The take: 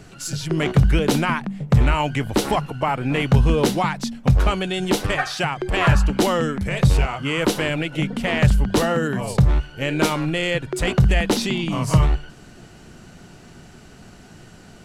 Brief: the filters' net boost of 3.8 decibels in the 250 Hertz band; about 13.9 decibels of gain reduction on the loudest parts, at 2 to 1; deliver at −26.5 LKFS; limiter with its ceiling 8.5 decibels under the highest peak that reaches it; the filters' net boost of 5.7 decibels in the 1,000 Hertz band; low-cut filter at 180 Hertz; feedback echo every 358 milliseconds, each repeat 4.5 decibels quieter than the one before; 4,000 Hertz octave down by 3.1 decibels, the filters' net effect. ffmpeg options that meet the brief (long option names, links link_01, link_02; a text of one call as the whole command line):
ffmpeg -i in.wav -af "highpass=180,equalizer=frequency=250:width_type=o:gain=7,equalizer=frequency=1000:width_type=o:gain=7,equalizer=frequency=4000:width_type=o:gain=-5,acompressor=threshold=-37dB:ratio=2,alimiter=limit=-23.5dB:level=0:latency=1,aecho=1:1:358|716|1074|1432|1790|2148|2506|2864|3222:0.596|0.357|0.214|0.129|0.0772|0.0463|0.0278|0.0167|0.01,volume=6dB" out.wav